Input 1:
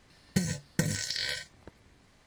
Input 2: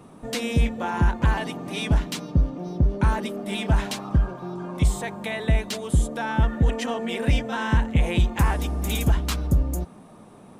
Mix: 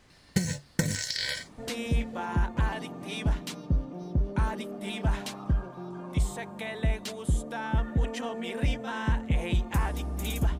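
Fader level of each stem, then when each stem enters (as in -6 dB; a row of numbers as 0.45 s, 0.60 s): +1.5 dB, -6.5 dB; 0.00 s, 1.35 s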